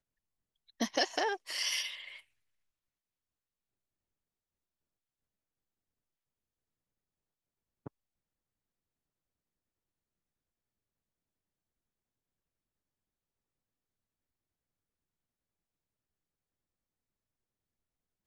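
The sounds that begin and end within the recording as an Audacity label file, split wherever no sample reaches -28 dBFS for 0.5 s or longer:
0.810000	1.820000	sound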